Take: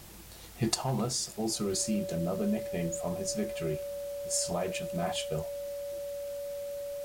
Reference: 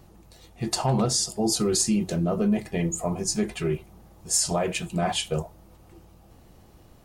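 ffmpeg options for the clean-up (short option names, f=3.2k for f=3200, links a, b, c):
-af "adeclick=t=4,bandreject=f=570:w=30,afwtdn=0.0025,asetnsamples=n=441:p=0,asendcmd='0.74 volume volume 8dB',volume=0dB"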